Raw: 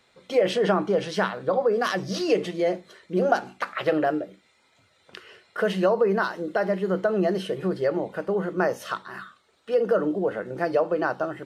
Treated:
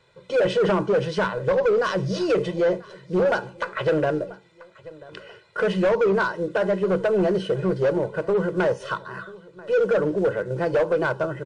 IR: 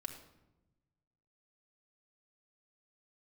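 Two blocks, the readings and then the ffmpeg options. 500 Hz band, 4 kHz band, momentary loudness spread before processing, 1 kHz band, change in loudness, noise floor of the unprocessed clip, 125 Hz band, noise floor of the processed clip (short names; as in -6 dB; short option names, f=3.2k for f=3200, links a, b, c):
+2.5 dB, -0.5 dB, 8 LU, -0.5 dB, +2.0 dB, -64 dBFS, +5.0 dB, -54 dBFS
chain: -filter_complex "[0:a]equalizer=f=140:w=1.4:g=8.5,aecho=1:1:2:0.71,aeval=exprs='0.562*(cos(1*acos(clip(val(0)/0.562,-1,1)))-cos(1*PI/2))+0.0794*(cos(2*acos(clip(val(0)/0.562,-1,1)))-cos(2*PI/2))':c=same,acrusher=bits=7:mode=log:mix=0:aa=0.000001,bandreject=f=2.1k:w=17,asplit=2[a][b];[b]aecho=0:1:987|1974:0.0708|0.0255[c];[a][c]amix=inputs=2:normalize=0,asoftclip=type=hard:threshold=-17.5dB,highshelf=f=3.6k:g=-8.5,volume=1.5dB" -ar 22050 -c:a wmav2 -b:a 128k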